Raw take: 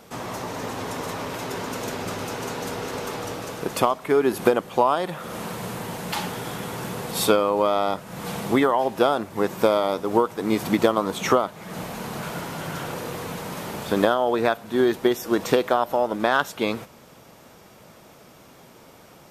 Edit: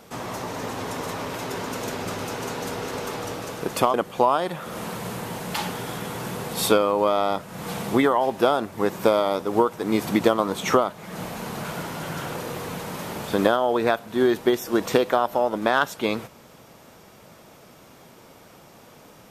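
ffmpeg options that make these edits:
-filter_complex "[0:a]asplit=2[a][b];[a]atrim=end=3.942[c];[b]atrim=start=4.518[d];[c][d]acrossfade=d=0.004:c1=hsin:c2=hsin"

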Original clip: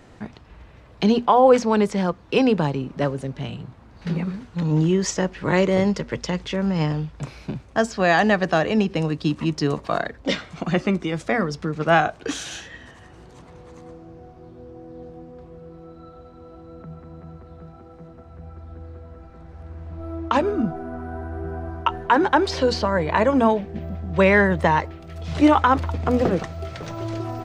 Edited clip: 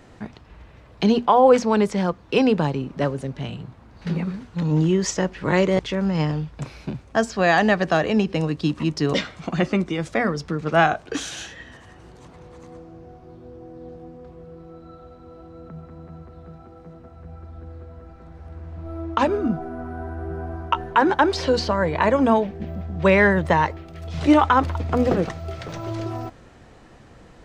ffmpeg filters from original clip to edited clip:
-filter_complex "[0:a]asplit=3[a][b][c];[a]atrim=end=5.792[d];[b]atrim=start=6.398:end=9.752[e];[c]atrim=start=10.278[f];[d][e]acrossfade=d=0.004:c1=hsin:c2=hsin[g];[g][f]acrossfade=d=0.004:c1=hsin:c2=hsin"

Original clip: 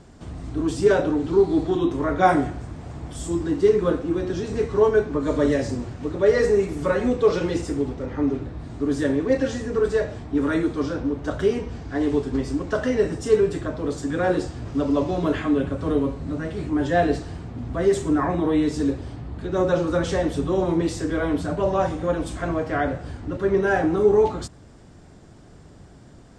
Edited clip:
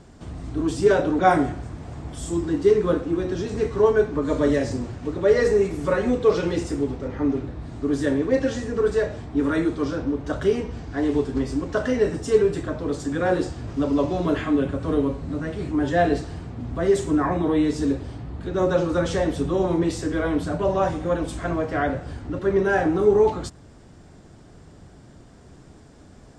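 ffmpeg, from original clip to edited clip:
-filter_complex "[0:a]asplit=2[a][b];[a]atrim=end=1.192[c];[b]atrim=start=2.168[d];[c][d]acrossfade=d=0.004:c1=hsin:c2=hsin"

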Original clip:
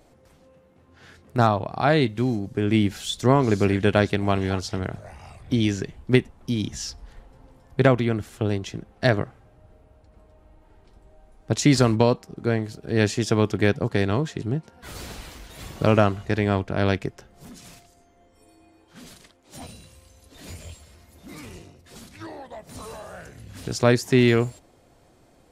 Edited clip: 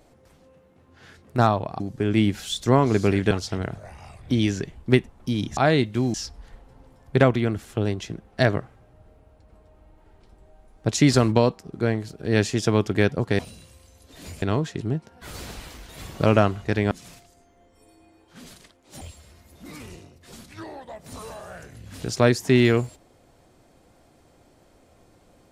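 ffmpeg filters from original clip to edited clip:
-filter_complex "[0:a]asplit=9[a][b][c][d][e][f][g][h][i];[a]atrim=end=1.802[j];[b]atrim=start=2.368:end=3.882[k];[c]atrim=start=4.518:end=6.782[l];[d]atrim=start=1.798:end=2.372[m];[e]atrim=start=6.778:end=14.032[n];[f]atrim=start=19.608:end=20.642[o];[g]atrim=start=14.028:end=16.522[p];[h]atrim=start=17.508:end=19.612[q];[i]atrim=start=20.638[r];[j][k]acrossfade=d=0.004:c1=hsin:c2=hsin[s];[s][l]acrossfade=d=0.004:c1=hsin:c2=hsin[t];[t][m]acrossfade=d=0.004:c1=hsin:c2=hsin[u];[u][n]acrossfade=d=0.004:c1=hsin:c2=hsin[v];[v][o]acrossfade=d=0.004:c1=hsin:c2=hsin[w];[w][p]acrossfade=d=0.004:c1=hsin:c2=hsin[x];[x][q]acrossfade=d=0.004:c1=hsin:c2=hsin[y];[y][r]acrossfade=d=0.004:c1=hsin:c2=hsin"

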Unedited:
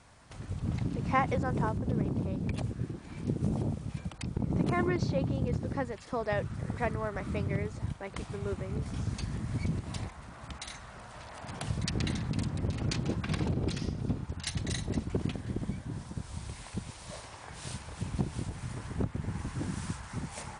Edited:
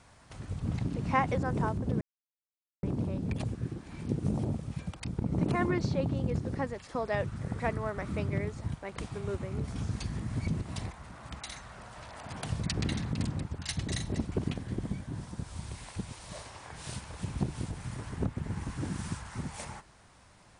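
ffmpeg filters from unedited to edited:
-filter_complex "[0:a]asplit=3[a][b][c];[a]atrim=end=2.01,asetpts=PTS-STARTPTS,afade=t=out:st=2.006:d=0.004:c=hsin,apad=pad_dur=0.82[d];[b]atrim=start=2.01:end=12.622,asetpts=PTS-STARTPTS,afade=t=in:d=0.004:c=hsin[e];[c]atrim=start=14.218[f];[d][e]concat=n=2:v=0:a=1[g];[g][f]acrossfade=d=0.004:c1=hsin:c2=hsin"

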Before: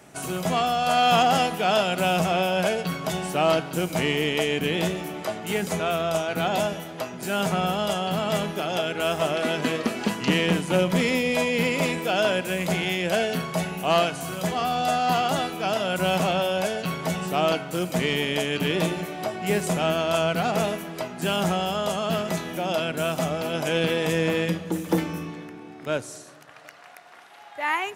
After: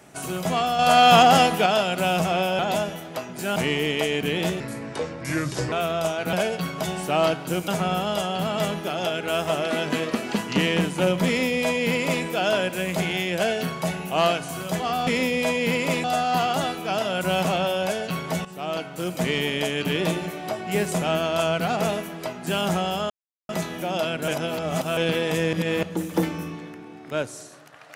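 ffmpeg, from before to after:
-filter_complex "[0:a]asplit=18[a][b][c][d][e][f][g][h][i][j][k][l][m][n][o][p][q][r];[a]atrim=end=0.792[s];[b]atrim=start=0.788:end=1.662,asetpts=PTS-STARTPTS,volume=5dB[t];[c]atrim=start=1.658:end=2.592[u];[d]atrim=start=6.428:end=7.402[v];[e]atrim=start=3.938:end=4.984[w];[f]atrim=start=4.98:end=5.82,asetpts=PTS-STARTPTS,asetrate=33075,aresample=44100[x];[g]atrim=start=5.816:end=6.432[y];[h]atrim=start=2.588:end=3.942[z];[i]atrim=start=7.398:end=14.792[aa];[j]atrim=start=10.988:end=11.962[ab];[k]atrim=start=14.788:end=17.2,asetpts=PTS-STARTPTS,afade=t=out:st=2.408:d=0.004:c=hsin:silence=0.211349[ac];[l]atrim=start=17.2:end=21.85,asetpts=PTS-STARTPTS,afade=t=in:d=0.78:silence=0.211349,afade=t=out:st=4.646:d=0.004:c=hsin[ad];[m]atrim=start=21.85:end=22.24,asetpts=PTS-STARTPTS,volume=0[ae];[n]atrim=start=22.24:end=23.032,asetpts=PTS-STARTPTS,afade=t=in:d=0.004:c=hsin[af];[o]atrim=start=23.028:end=23.722,asetpts=PTS-STARTPTS,areverse[ag];[p]atrim=start=23.718:end=24.282[ah];[q]atrim=start=24.278:end=24.582,asetpts=PTS-STARTPTS,areverse[ai];[r]atrim=start=24.578[aj];[s][t]acrossfade=d=0.004:c1=hsin:c2=hsin[ak];[ak][u]acrossfade=d=0.004:c1=hsin:c2=hsin[al];[al][v]acrossfade=d=0.004:c1=hsin:c2=hsin[am];[am][w]acrossfade=d=0.004:c1=hsin:c2=hsin[an];[an][x]acrossfade=d=0.004:c1=hsin:c2=hsin[ao];[ao][y]acrossfade=d=0.004:c1=hsin:c2=hsin[ap];[ap][z]acrossfade=d=0.004:c1=hsin:c2=hsin[aq];[aq][aa]acrossfade=d=0.004:c1=hsin:c2=hsin[ar];[ar][ab]acrossfade=d=0.004:c1=hsin:c2=hsin[as];[ac][ad][ae][af]concat=n=4:v=0:a=1[at];[as][at]acrossfade=d=0.004:c1=hsin:c2=hsin[au];[au][ag]acrossfade=d=0.004:c1=hsin:c2=hsin[av];[av][ah]acrossfade=d=0.004:c1=hsin:c2=hsin[aw];[aw][ai]acrossfade=d=0.004:c1=hsin:c2=hsin[ax];[ax][aj]acrossfade=d=0.004:c1=hsin:c2=hsin"

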